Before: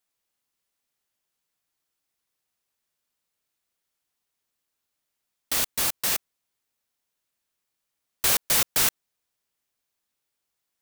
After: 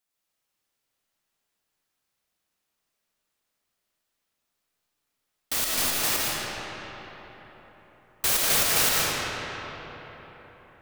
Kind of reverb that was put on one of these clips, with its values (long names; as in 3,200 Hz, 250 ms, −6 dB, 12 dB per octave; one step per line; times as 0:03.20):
comb and all-pass reverb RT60 4.5 s, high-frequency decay 0.55×, pre-delay 75 ms, DRR −5.5 dB
level −2.5 dB